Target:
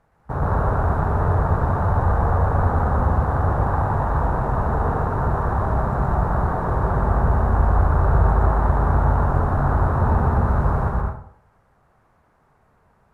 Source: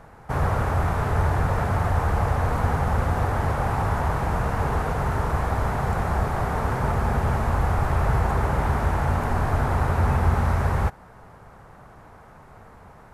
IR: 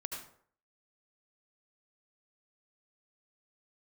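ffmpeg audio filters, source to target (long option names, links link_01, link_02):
-filter_complex "[0:a]afwtdn=0.0501,asplit=2[link_01][link_02];[1:a]atrim=start_sample=2205,adelay=119[link_03];[link_02][link_03]afir=irnorm=-1:irlink=0,volume=1.5dB[link_04];[link_01][link_04]amix=inputs=2:normalize=0"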